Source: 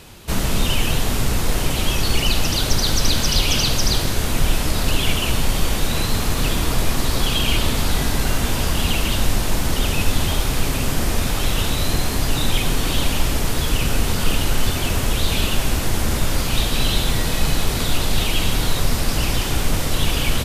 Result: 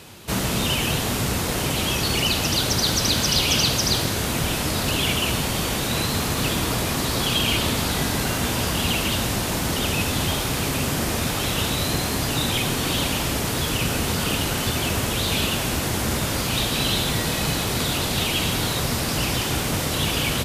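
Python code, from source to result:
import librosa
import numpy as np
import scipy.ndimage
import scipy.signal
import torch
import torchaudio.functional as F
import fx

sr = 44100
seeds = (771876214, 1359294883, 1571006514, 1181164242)

y = scipy.signal.sosfilt(scipy.signal.butter(2, 89.0, 'highpass', fs=sr, output='sos'), x)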